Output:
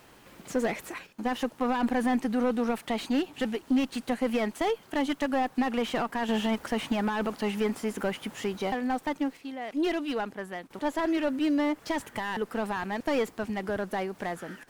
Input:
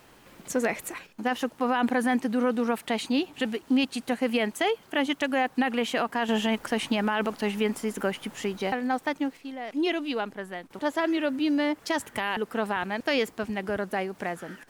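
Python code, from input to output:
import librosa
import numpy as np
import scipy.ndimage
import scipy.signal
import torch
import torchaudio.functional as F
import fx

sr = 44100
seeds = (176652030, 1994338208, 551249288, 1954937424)

y = fx.diode_clip(x, sr, knee_db=-16.5)
y = fx.slew_limit(y, sr, full_power_hz=59.0)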